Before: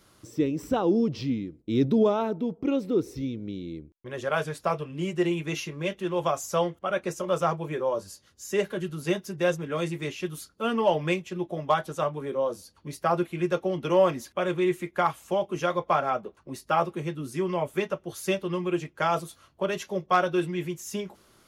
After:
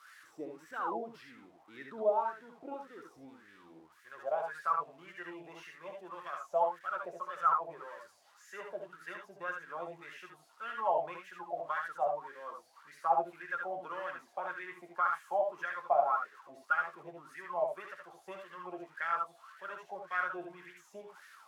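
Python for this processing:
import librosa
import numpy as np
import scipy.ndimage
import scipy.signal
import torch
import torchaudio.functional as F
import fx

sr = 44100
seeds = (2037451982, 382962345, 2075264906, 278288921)

y = x + 0.5 * 10.0 ** (-28.5 / 20.0) * np.diff(np.sign(x), prepend=np.sign(x[:1]))
y = fx.wah_lfo(y, sr, hz=1.8, low_hz=670.0, high_hz=1800.0, q=12.0)
y = fx.room_early_taps(y, sr, ms=(67, 79), db=(-7.0, -7.0))
y = F.gain(torch.from_numpy(y), 5.5).numpy()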